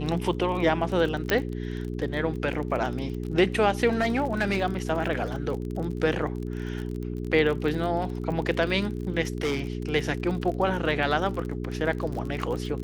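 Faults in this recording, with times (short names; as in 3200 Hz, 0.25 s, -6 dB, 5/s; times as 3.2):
crackle 34/s -32 dBFS
hum 60 Hz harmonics 7 -32 dBFS
1.3 pop -9 dBFS
3.93–4.6 clipped -19 dBFS
9.41–9.63 clipped -22 dBFS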